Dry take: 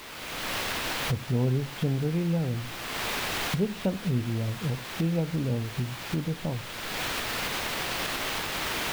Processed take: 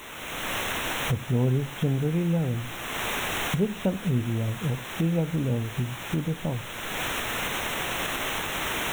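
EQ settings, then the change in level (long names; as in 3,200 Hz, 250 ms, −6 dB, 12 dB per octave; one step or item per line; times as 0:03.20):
Butterworth band-reject 4,700 Hz, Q 2.3
+2.0 dB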